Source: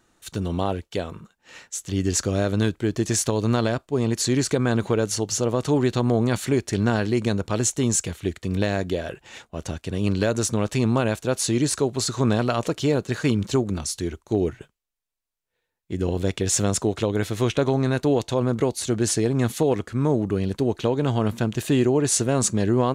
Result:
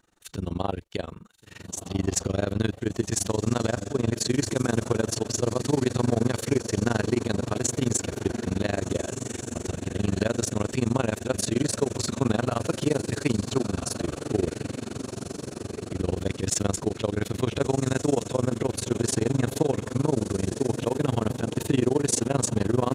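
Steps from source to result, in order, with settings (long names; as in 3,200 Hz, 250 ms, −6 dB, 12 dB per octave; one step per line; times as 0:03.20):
feedback delay with all-pass diffusion 1,452 ms, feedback 61%, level −8.5 dB
amplitude modulation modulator 23 Hz, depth 95%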